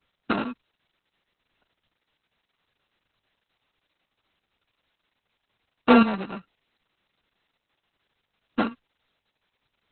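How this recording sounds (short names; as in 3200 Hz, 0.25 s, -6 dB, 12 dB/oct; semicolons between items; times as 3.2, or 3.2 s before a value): a buzz of ramps at a fixed pitch in blocks of 32 samples; chopped level 0.73 Hz, depth 60%, duty 40%; a quantiser's noise floor 12-bit, dither triangular; Opus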